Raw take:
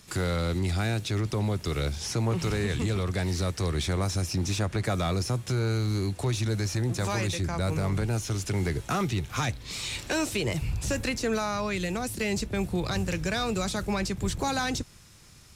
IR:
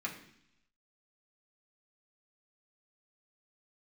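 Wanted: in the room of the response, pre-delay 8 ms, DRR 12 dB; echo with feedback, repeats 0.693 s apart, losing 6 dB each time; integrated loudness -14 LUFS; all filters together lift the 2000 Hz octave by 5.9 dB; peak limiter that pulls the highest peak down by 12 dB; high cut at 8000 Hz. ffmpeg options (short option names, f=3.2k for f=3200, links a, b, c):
-filter_complex "[0:a]lowpass=8k,equalizer=f=2k:t=o:g=7.5,alimiter=level_in=1.5dB:limit=-24dB:level=0:latency=1,volume=-1.5dB,aecho=1:1:693|1386|2079|2772|3465|4158:0.501|0.251|0.125|0.0626|0.0313|0.0157,asplit=2[a][b];[1:a]atrim=start_sample=2205,adelay=8[c];[b][c]afir=irnorm=-1:irlink=0,volume=-14.5dB[d];[a][d]amix=inputs=2:normalize=0,volume=18.5dB"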